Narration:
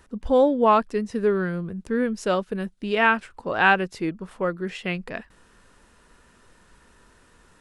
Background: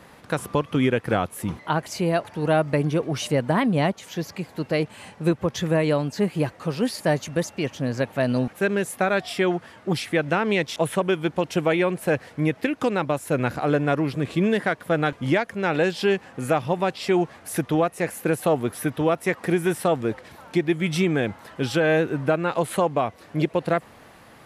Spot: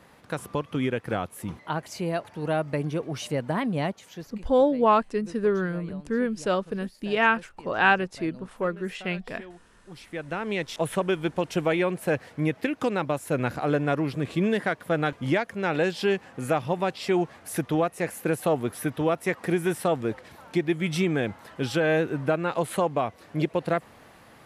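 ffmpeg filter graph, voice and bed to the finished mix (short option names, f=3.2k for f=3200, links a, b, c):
-filter_complex "[0:a]adelay=4200,volume=-2dB[a];[1:a]volume=14dB,afade=t=out:st=3.87:d=0.66:silence=0.141254,afade=t=in:st=9.89:d=1.06:silence=0.1[b];[a][b]amix=inputs=2:normalize=0"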